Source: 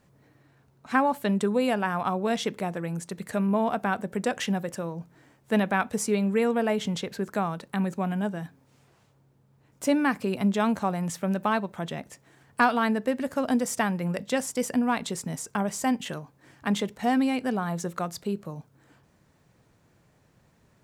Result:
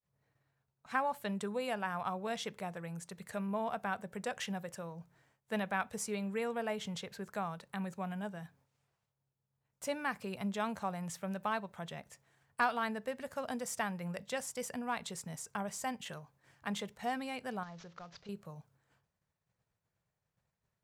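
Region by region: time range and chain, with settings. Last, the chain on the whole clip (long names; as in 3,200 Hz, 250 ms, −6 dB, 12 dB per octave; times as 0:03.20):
0:17.63–0:18.29: variable-slope delta modulation 32 kbit/s + downward compressor 2 to 1, threshold −41 dBFS
whole clip: downward expander −53 dBFS; parametric band 290 Hz −12 dB 0.83 octaves; level −8.5 dB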